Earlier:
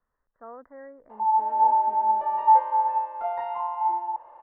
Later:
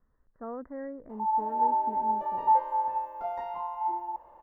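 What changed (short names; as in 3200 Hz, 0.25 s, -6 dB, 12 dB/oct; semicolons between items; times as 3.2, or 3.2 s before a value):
background -6.5 dB; master: remove three-band isolator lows -13 dB, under 530 Hz, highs -21 dB, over 3600 Hz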